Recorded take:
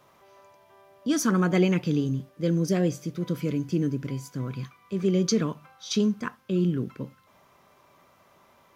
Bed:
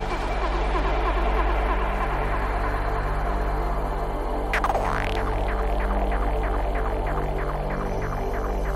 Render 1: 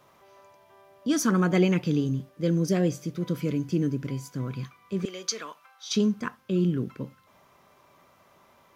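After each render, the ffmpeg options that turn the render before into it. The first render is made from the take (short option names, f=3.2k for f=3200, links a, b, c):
-filter_complex "[0:a]asettb=1/sr,asplit=3[a][b][c];[a]atrim=end=5.054[d];[b]atrim=start=5.05:end=5.91,asetpts=PTS-STARTPTS,afade=t=in:d=0.004:c=qsin,afade=t=out:st=0.856:d=0.004:c=qsin,highpass=870[e];[c]atrim=start=5.906[f];[d][e]acrossfade=d=0.004:c1=hsin:c2=qsin[g];[g][f]acrossfade=d=0.004:c1=qsin:c2=hsin"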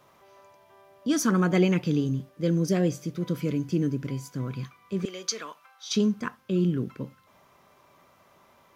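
-af anull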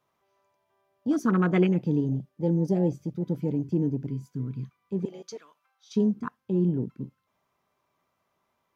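-af "bandreject=f=560:w=18,afwtdn=0.0282"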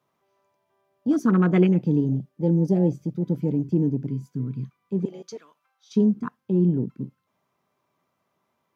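-af "highpass=130,lowshelf=f=310:g=7.5"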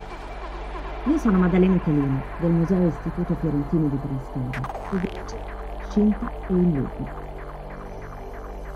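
-filter_complex "[1:a]volume=-9dB[a];[0:a][a]amix=inputs=2:normalize=0"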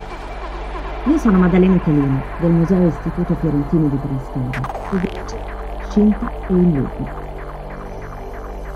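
-af "volume=6dB,alimiter=limit=-3dB:level=0:latency=1"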